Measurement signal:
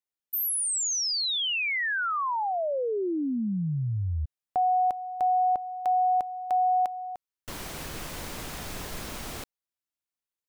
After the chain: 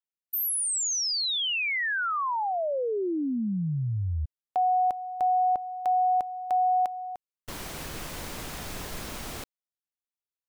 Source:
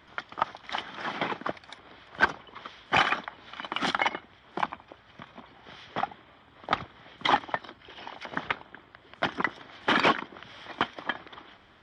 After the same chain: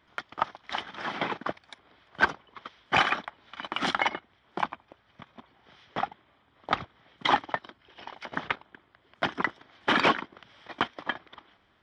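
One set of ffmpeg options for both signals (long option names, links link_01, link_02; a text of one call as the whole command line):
ffmpeg -i in.wav -af "agate=range=-9dB:threshold=-47dB:ratio=16:release=36:detection=peak" out.wav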